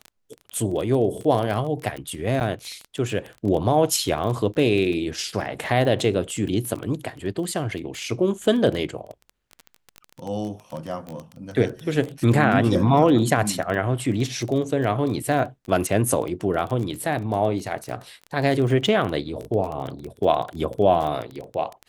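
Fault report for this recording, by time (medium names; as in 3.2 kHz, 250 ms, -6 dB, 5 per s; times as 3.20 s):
crackle 17 per s -27 dBFS
2.40–2.41 s: dropout 8.8 ms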